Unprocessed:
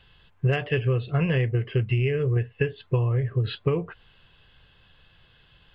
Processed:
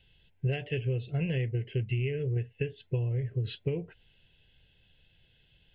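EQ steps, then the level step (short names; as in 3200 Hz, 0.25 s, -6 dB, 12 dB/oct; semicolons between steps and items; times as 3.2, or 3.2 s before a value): notch 1700 Hz, Q 22; fixed phaser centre 2800 Hz, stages 4; -6.5 dB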